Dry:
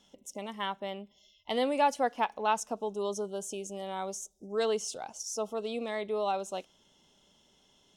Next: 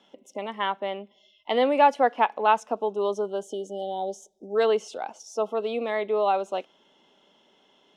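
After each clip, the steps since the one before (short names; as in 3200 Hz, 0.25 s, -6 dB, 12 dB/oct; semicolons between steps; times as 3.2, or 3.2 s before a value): three-band isolator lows -23 dB, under 220 Hz, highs -19 dB, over 3400 Hz; spectral gain 3.43–4.56, 940–2900 Hz -29 dB; gain +8 dB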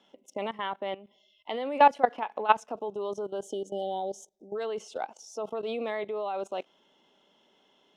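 level quantiser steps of 17 dB; gain +2 dB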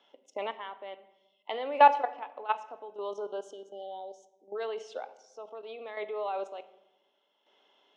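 chopper 0.67 Hz, depth 60%, duty 35%; BPF 440–4600 Hz; shoebox room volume 440 m³, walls mixed, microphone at 0.32 m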